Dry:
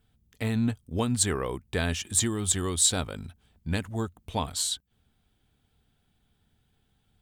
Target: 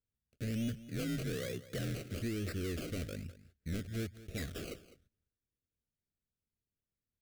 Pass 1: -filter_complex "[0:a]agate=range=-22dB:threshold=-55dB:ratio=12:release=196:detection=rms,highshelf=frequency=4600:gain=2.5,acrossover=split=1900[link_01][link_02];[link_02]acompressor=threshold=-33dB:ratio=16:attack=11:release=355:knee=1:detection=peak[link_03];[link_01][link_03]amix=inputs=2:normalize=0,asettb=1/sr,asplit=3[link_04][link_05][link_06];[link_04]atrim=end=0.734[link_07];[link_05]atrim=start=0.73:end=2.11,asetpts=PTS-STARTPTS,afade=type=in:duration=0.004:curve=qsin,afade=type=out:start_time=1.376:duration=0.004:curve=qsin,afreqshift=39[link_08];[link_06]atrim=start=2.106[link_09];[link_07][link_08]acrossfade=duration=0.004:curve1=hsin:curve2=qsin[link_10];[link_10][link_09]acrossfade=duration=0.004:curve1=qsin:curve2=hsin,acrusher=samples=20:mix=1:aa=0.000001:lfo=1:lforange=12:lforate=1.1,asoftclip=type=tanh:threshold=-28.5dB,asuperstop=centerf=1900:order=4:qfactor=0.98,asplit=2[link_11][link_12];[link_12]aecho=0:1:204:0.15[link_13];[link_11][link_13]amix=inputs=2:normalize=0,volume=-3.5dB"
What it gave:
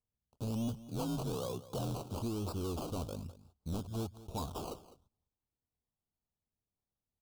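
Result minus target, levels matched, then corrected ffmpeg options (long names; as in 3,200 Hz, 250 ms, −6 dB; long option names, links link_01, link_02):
2,000 Hz band −13.5 dB
-filter_complex "[0:a]agate=range=-22dB:threshold=-55dB:ratio=12:release=196:detection=rms,highshelf=frequency=4600:gain=2.5,acrossover=split=1900[link_01][link_02];[link_02]acompressor=threshold=-33dB:ratio=16:attack=11:release=355:knee=1:detection=peak[link_03];[link_01][link_03]amix=inputs=2:normalize=0,asettb=1/sr,asplit=3[link_04][link_05][link_06];[link_04]atrim=end=0.734[link_07];[link_05]atrim=start=0.73:end=2.11,asetpts=PTS-STARTPTS,afade=type=in:duration=0.004:curve=qsin,afade=type=out:start_time=1.376:duration=0.004:curve=qsin,afreqshift=39[link_08];[link_06]atrim=start=2.106[link_09];[link_07][link_08]acrossfade=duration=0.004:curve1=hsin:curve2=qsin[link_10];[link_10][link_09]acrossfade=duration=0.004:curve1=qsin:curve2=hsin,acrusher=samples=20:mix=1:aa=0.000001:lfo=1:lforange=12:lforate=1.1,asoftclip=type=tanh:threshold=-28.5dB,asuperstop=centerf=920:order=4:qfactor=0.98,asplit=2[link_11][link_12];[link_12]aecho=0:1:204:0.15[link_13];[link_11][link_13]amix=inputs=2:normalize=0,volume=-3.5dB"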